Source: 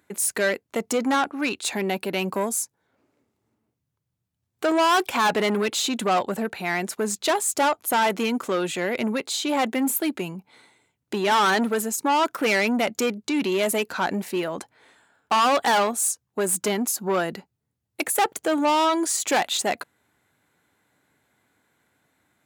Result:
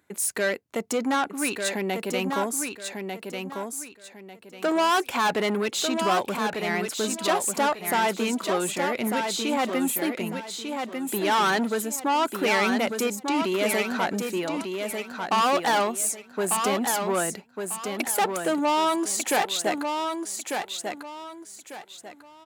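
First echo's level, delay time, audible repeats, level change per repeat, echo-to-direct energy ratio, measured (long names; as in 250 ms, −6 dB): −5.5 dB, 1,196 ms, 3, −11.0 dB, −5.0 dB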